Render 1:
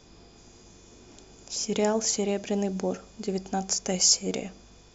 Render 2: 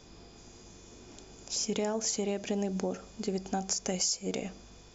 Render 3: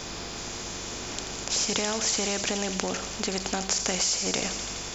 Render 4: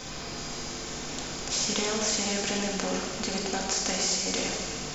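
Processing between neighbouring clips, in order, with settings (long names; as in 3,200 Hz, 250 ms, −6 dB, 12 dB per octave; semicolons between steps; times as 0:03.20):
downward compressor 6 to 1, threshold −28 dBFS, peak gain reduction 11.5 dB
in parallel at −1 dB: brickwall limiter −24.5 dBFS, peak gain reduction 9 dB; on the sum: delay with a high-pass on its return 84 ms, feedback 75%, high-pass 3,200 Hz, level −10 dB; every bin compressed towards the loudest bin 2 to 1; level +7.5 dB
rectangular room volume 860 cubic metres, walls mixed, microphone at 2 metres; level −4.5 dB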